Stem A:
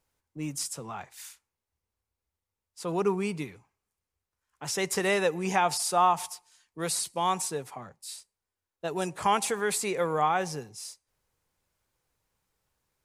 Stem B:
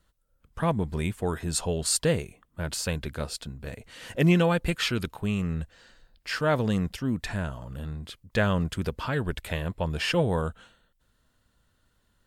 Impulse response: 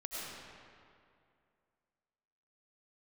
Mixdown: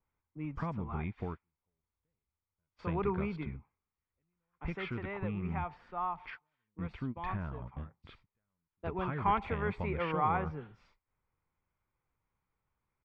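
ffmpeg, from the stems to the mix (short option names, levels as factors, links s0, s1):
-filter_complex "[0:a]adynamicequalizer=threshold=0.00447:dfrequency=5800:dqfactor=0.89:tfrequency=5800:tqfactor=0.89:attack=5:release=100:ratio=0.375:range=2.5:mode=cutabove:tftype=bell,volume=1.33,afade=t=out:st=4.39:d=0.62:silence=0.398107,afade=t=in:st=7.82:d=0.45:silence=0.375837,asplit=2[s0][s1];[1:a]acompressor=threshold=0.0316:ratio=5,volume=0.562[s2];[s1]apad=whole_len=540947[s3];[s2][s3]sidechaingate=range=0.00316:threshold=0.002:ratio=16:detection=peak[s4];[s0][s4]amix=inputs=2:normalize=0,lowpass=f=2400:w=0.5412,lowpass=f=2400:w=1.3066,aecho=1:1:0.9:0.35"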